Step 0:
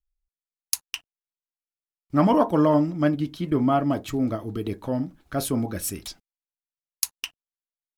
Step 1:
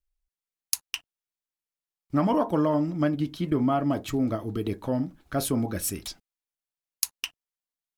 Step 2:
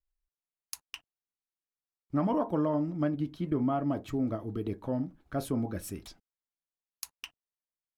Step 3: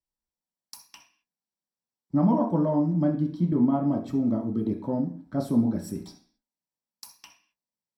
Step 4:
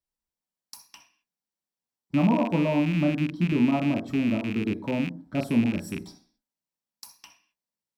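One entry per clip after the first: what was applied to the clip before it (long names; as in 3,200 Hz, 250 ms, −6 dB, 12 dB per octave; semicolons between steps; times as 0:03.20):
downward compressor 4 to 1, threshold −20 dBFS, peak gain reduction 6 dB
high-shelf EQ 2,200 Hz −10 dB; level −4.5 dB
convolution reverb RT60 0.45 s, pre-delay 3 ms, DRR 0 dB; level −7.5 dB
loose part that buzzes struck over −32 dBFS, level −25 dBFS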